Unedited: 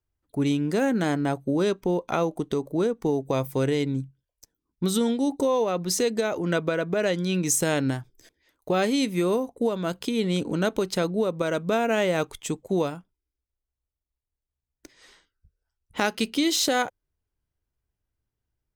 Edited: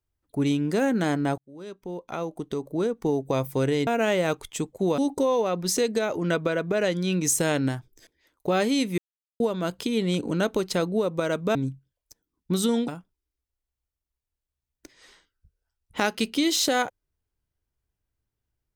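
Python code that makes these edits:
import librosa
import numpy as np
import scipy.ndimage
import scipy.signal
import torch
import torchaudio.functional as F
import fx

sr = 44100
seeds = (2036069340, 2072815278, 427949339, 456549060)

y = fx.edit(x, sr, fx.fade_in_span(start_s=1.38, length_s=1.76),
    fx.swap(start_s=3.87, length_s=1.33, other_s=11.77, other_length_s=1.11),
    fx.silence(start_s=9.2, length_s=0.42), tone=tone)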